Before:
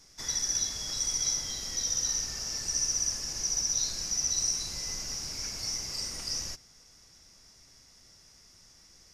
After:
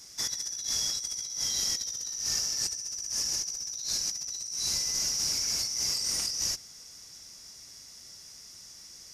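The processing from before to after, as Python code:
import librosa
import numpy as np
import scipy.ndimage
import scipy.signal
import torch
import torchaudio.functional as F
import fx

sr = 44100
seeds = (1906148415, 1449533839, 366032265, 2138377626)

y = fx.highpass(x, sr, hz=77.0, slope=6)
y = fx.high_shelf(y, sr, hz=4000.0, db=10.5)
y = fx.over_compress(y, sr, threshold_db=-31.0, ratio=-1.0)
y = F.gain(torch.from_numpy(y), -2.0).numpy()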